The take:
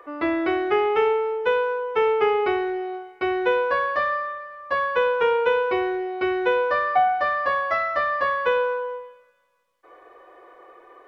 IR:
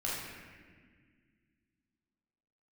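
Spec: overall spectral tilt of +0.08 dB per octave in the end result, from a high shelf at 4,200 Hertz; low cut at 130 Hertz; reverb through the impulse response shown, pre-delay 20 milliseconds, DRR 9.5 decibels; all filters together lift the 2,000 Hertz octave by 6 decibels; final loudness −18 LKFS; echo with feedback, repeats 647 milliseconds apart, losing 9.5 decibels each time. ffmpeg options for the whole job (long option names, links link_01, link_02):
-filter_complex "[0:a]highpass=130,equalizer=frequency=2000:width_type=o:gain=9,highshelf=frequency=4200:gain=-7,aecho=1:1:647|1294|1941|2588:0.335|0.111|0.0365|0.012,asplit=2[link_01][link_02];[1:a]atrim=start_sample=2205,adelay=20[link_03];[link_02][link_03]afir=irnorm=-1:irlink=0,volume=-14.5dB[link_04];[link_01][link_04]amix=inputs=2:normalize=0,volume=2dB"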